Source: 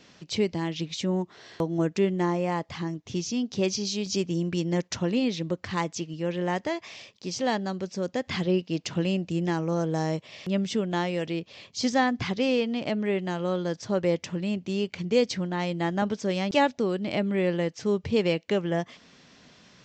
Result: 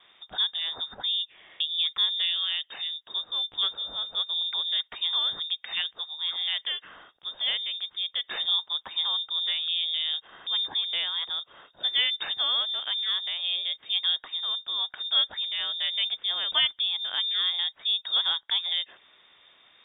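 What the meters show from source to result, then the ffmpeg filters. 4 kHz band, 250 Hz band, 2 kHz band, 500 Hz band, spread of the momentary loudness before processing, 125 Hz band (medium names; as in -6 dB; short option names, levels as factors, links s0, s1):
+14.5 dB, under -35 dB, -2.0 dB, -24.5 dB, 7 LU, under -30 dB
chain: -af "lowpass=f=3200:t=q:w=0.5098,lowpass=f=3200:t=q:w=0.6013,lowpass=f=3200:t=q:w=0.9,lowpass=f=3200:t=q:w=2.563,afreqshift=-3800,volume=0.794"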